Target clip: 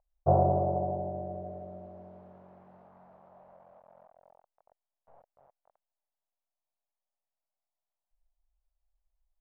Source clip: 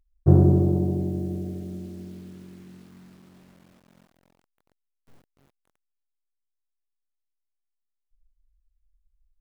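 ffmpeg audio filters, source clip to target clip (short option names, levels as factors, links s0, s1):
-af "lowpass=f=850:t=q:w=1.7,lowshelf=f=440:t=q:w=3:g=-11.5"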